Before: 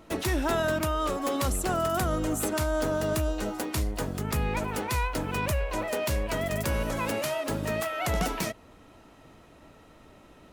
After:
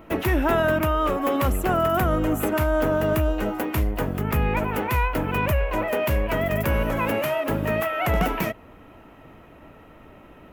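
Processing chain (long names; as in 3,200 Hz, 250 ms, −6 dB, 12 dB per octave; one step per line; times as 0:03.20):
flat-topped bell 6,100 Hz −13.5 dB
level +6 dB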